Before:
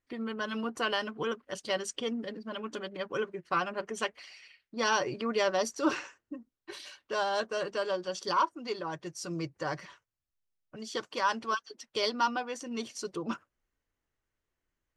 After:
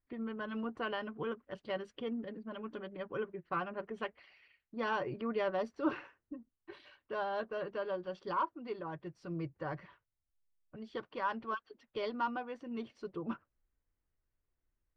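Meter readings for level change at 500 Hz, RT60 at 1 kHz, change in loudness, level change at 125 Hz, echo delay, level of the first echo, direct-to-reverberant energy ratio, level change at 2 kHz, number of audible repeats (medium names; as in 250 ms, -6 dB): -5.5 dB, no reverb, -6.5 dB, -2.0 dB, no echo, no echo, no reverb, -8.0 dB, no echo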